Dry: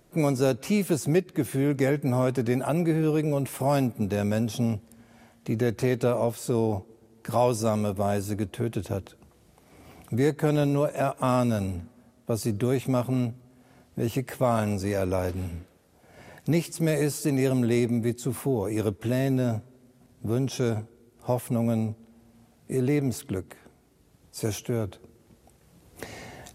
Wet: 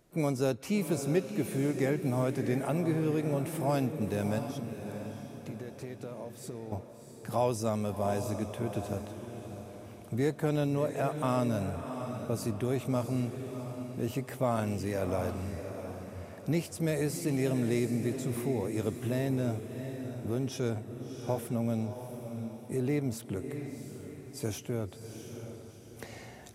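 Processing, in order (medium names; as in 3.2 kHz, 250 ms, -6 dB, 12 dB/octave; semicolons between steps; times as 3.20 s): 4.38–6.72 s: compression 6:1, threshold -33 dBFS, peak gain reduction 13.5 dB; echo that smears into a reverb 691 ms, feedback 42%, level -8 dB; trim -6 dB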